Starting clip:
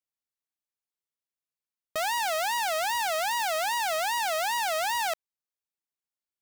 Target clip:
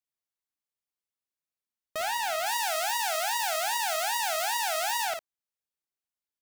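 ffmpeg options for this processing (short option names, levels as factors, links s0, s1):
-filter_complex "[0:a]asettb=1/sr,asplit=3[s0][s1][s2];[s0]atrim=end=2.464[s3];[s1]atrim=start=2.46:end=5.05,asetpts=PTS-STARTPTS,afade=t=in:d=0.004:c=qsin,afade=t=out:st=2.586:d=0.004:c=qsin,bass=f=250:g=-12,treble=f=4000:g=5[s4];[s2]atrim=start=5.046[s5];[s3][s4]acrossfade=d=0.004:c1=hsin:c2=qsin[s6];[s6][s5]acrossfade=d=0.004:c1=qsin:c2=hsin,aecho=1:1:39|54:0.316|0.473,volume=0.708"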